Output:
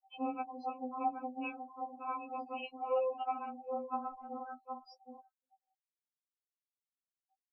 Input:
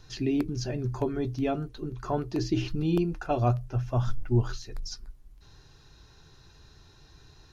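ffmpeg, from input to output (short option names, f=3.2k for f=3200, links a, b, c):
-filter_complex "[0:a]bandreject=f=50:t=h:w=6,bandreject=f=100:t=h:w=6,bandreject=f=150:t=h:w=6,bandreject=f=200:t=h:w=6,aeval=exprs='max(val(0),0)':c=same,aecho=1:1:768:0.299,asoftclip=type=tanh:threshold=-19dB,asplit=3[a][b][c];[a]bandpass=f=730:t=q:w=8,volume=0dB[d];[b]bandpass=f=1.09k:t=q:w=8,volume=-6dB[e];[c]bandpass=f=2.44k:t=q:w=8,volume=-9dB[f];[d][e][f]amix=inputs=3:normalize=0,afftfilt=real='re*gte(hypot(re,im),0.002)':imag='im*gte(hypot(re,im),0.002)':win_size=1024:overlap=0.75,acrossover=split=200[g][h];[h]acompressor=threshold=-45dB:ratio=2[i];[g][i]amix=inputs=2:normalize=0,lowpass=f=6.1k:w=0.5412,lowpass=f=6.1k:w=1.3066,afftfilt=real='re*3.46*eq(mod(b,12),0)':imag='im*3.46*eq(mod(b,12),0)':win_size=2048:overlap=0.75,volume=17dB"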